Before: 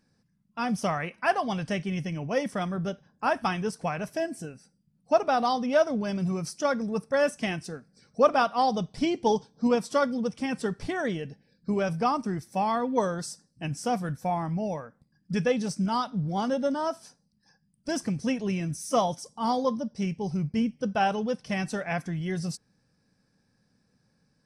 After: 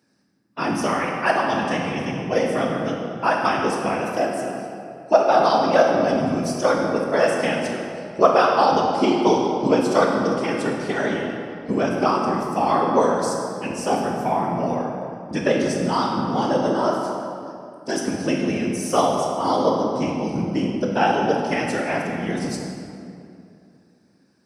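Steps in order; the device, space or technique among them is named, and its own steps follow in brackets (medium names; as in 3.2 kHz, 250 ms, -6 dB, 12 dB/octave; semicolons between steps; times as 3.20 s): whispering ghost (whisper effect; high-pass 200 Hz 12 dB/octave; reverberation RT60 2.5 s, pre-delay 16 ms, DRR -0.5 dB); trim +4.5 dB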